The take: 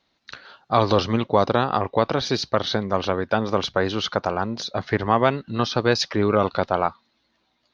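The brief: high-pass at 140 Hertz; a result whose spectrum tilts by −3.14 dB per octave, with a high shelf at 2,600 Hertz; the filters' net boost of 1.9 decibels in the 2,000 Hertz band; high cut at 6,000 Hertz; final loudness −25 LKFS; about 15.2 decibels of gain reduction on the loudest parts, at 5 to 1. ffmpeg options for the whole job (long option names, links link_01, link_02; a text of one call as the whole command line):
ffmpeg -i in.wav -af "highpass=140,lowpass=6000,equalizer=frequency=2000:width_type=o:gain=4.5,highshelf=frequency=2600:gain=-4.5,acompressor=threshold=-31dB:ratio=5,volume=10.5dB" out.wav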